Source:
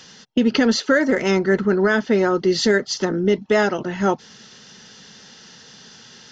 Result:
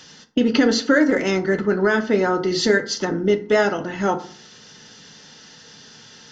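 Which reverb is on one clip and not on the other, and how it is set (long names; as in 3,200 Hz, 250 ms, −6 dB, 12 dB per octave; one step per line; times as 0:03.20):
feedback delay network reverb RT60 0.49 s, low-frequency decay 1.2×, high-frequency decay 0.55×, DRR 6.5 dB
level −1 dB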